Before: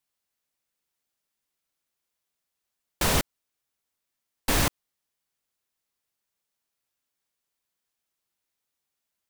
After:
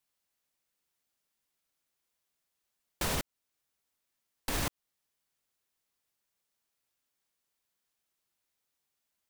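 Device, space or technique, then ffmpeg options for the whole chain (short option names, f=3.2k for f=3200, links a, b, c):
stacked limiters: -af "alimiter=limit=-16dB:level=0:latency=1:release=418,alimiter=limit=-21.5dB:level=0:latency=1:release=122"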